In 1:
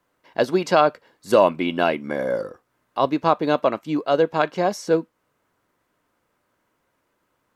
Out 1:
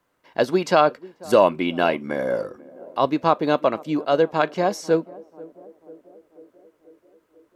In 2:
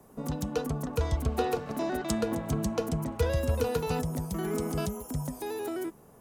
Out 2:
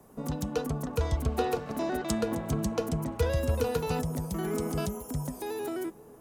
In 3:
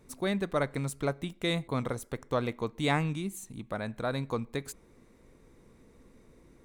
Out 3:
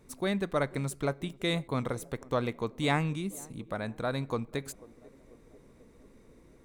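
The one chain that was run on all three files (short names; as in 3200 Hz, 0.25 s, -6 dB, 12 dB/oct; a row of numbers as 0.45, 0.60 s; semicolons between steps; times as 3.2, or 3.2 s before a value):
narrowing echo 0.49 s, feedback 68%, band-pass 380 Hz, level -20 dB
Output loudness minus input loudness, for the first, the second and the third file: 0.0, 0.0, 0.0 LU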